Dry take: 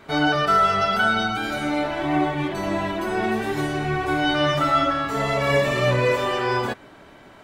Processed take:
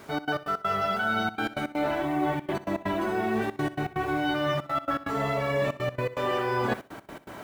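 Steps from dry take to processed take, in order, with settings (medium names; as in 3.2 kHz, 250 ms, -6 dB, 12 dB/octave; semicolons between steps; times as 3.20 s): high-pass 64 Hz 6 dB/octave; treble shelf 3.1 kHz -9 dB; reverse; compression 12:1, threshold -31 dBFS, peak gain reduction 15.5 dB; reverse; word length cut 10-bit, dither none; trance gate "xx.x.x.xxxxx" 163 bpm -24 dB; on a send: flutter echo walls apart 11 m, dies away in 0.23 s; on the sum: trim +7 dB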